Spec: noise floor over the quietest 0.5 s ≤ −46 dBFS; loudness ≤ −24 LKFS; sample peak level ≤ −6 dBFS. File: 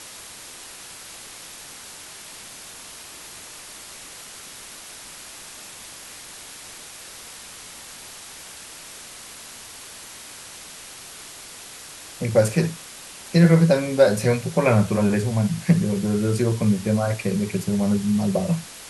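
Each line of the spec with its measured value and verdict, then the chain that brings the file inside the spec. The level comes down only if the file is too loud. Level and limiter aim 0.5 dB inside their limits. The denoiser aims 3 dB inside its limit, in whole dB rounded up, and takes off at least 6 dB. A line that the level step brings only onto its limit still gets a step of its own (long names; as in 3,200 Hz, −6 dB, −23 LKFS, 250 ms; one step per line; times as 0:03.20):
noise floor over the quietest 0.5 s −41 dBFS: out of spec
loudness −21.0 LKFS: out of spec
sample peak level −3.5 dBFS: out of spec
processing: broadband denoise 6 dB, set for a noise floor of −41 dBFS
level −3.5 dB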